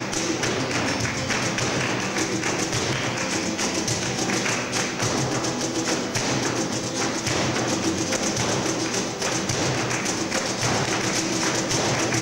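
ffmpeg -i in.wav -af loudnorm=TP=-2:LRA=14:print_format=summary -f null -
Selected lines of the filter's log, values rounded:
Input Integrated:    -23.3 LUFS
Input True Peak:     -12.1 dBTP
Input LRA:             1.0 LU
Input Threshold:     -33.3 LUFS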